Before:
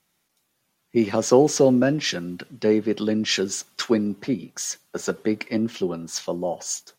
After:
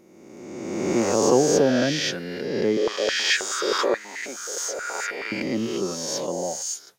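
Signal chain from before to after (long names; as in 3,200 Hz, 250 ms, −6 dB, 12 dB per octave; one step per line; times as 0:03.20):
peak hold with a rise ahead of every peak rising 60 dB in 1.66 s
0:02.77–0:05.32: high-pass on a step sequencer 9.4 Hz 490–1,800 Hz
level −4.5 dB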